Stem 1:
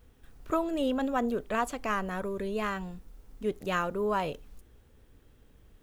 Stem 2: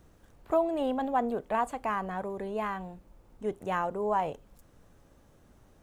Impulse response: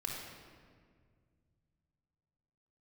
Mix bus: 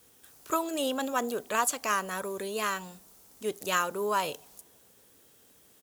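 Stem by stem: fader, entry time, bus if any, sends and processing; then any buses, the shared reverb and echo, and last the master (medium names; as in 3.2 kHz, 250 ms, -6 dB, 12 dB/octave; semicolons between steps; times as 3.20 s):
+1.5 dB, 0.00 s, no send, tone controls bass -13 dB, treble +15 dB
-12.0 dB, 0.9 ms, send -17 dB, none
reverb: on, RT60 1.9 s, pre-delay 25 ms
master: high-pass 110 Hz 12 dB/octave; wow and flutter 22 cents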